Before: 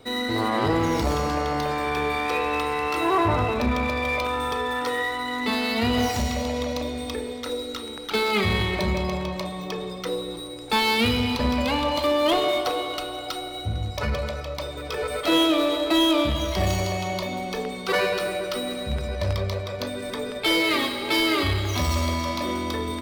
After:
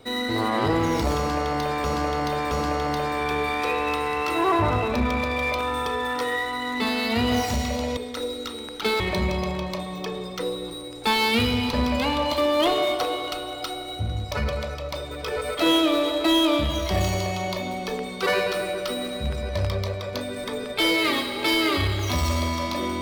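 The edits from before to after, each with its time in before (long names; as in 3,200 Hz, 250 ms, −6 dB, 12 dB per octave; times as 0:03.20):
0:01.17–0:01.84: repeat, 3 plays
0:06.63–0:07.26: remove
0:08.29–0:08.66: remove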